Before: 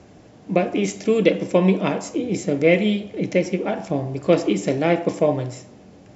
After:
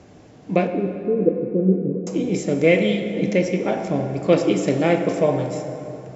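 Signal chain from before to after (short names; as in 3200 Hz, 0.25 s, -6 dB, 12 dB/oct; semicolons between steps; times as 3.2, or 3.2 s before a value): 0.67–2.07 rippled Chebyshev low-pass 510 Hz, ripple 3 dB; plate-style reverb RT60 3.4 s, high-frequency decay 0.55×, DRR 6 dB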